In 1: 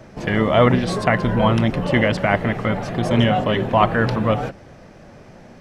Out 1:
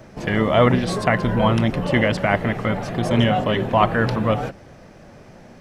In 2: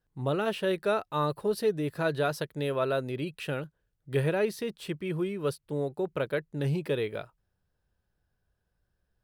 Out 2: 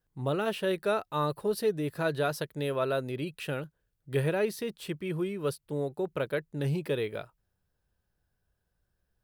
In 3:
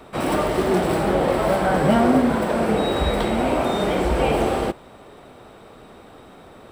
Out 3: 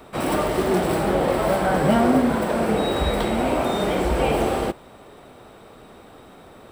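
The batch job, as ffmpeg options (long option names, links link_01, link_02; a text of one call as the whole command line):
ffmpeg -i in.wav -af "highshelf=frequency=10000:gain=6,volume=-1dB" out.wav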